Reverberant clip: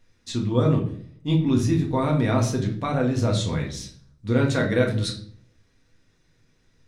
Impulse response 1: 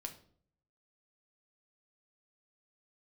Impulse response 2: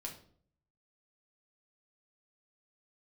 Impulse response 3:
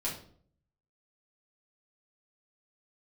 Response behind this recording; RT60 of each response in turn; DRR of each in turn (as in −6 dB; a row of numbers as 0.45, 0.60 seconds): 2; 0.55, 0.55, 0.55 seconds; 4.5, 0.0, −6.0 decibels